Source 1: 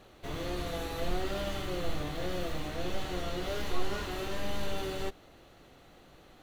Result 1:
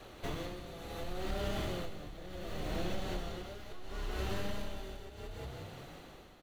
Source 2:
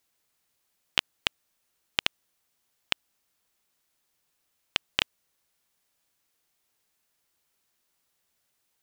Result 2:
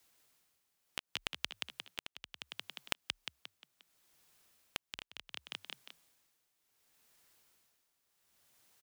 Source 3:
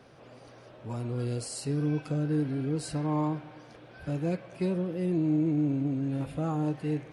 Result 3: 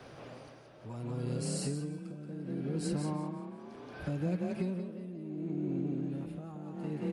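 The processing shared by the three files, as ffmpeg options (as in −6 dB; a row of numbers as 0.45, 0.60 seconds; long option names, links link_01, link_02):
-filter_complex "[0:a]asplit=6[link_01][link_02][link_03][link_04][link_05][link_06];[link_02]adelay=177,afreqshift=32,volume=-4dB[link_07];[link_03]adelay=354,afreqshift=64,volume=-11.5dB[link_08];[link_04]adelay=531,afreqshift=96,volume=-19.1dB[link_09];[link_05]adelay=708,afreqshift=128,volume=-26.6dB[link_10];[link_06]adelay=885,afreqshift=160,volume=-34.1dB[link_11];[link_01][link_07][link_08][link_09][link_10][link_11]amix=inputs=6:normalize=0,acompressor=threshold=-36dB:ratio=16,tremolo=f=0.69:d=0.74,adynamicequalizer=threshold=0.00178:dfrequency=190:dqfactor=3.2:tfrequency=190:tqfactor=3.2:attack=5:release=100:ratio=0.375:range=2.5:mode=boostabove:tftype=bell,volume=5dB"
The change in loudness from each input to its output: −5.5, −13.0, −6.5 LU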